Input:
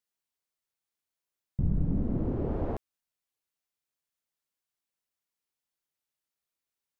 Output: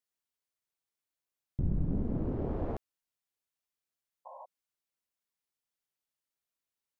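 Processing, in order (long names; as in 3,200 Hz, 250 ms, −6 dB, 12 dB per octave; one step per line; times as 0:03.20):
sound drawn into the spectrogram noise, 0:04.25–0:04.46, 510–1,100 Hz −45 dBFS
highs frequency-modulated by the lows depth 0.67 ms
level −3 dB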